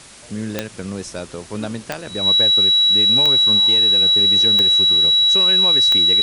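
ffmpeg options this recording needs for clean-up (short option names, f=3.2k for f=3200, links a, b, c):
-af "adeclick=t=4,bandreject=f=3.9k:w=30,afwtdn=0.01"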